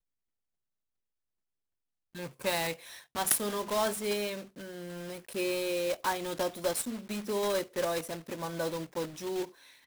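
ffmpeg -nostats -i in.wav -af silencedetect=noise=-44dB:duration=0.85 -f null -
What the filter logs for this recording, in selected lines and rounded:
silence_start: 0.00
silence_end: 2.15 | silence_duration: 2.15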